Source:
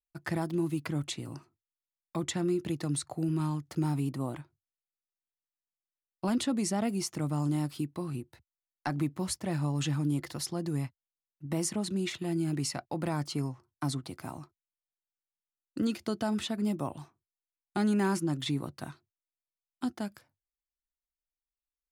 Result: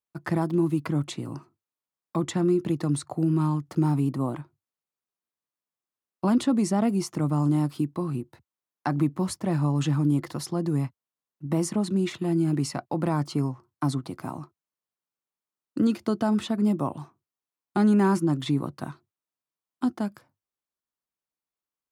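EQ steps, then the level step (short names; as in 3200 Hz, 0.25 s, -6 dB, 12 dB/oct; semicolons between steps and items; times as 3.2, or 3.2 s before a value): HPF 130 Hz; tilt shelf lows +5 dB, about 650 Hz; bell 1100 Hz +6.5 dB 0.77 oct; +4.0 dB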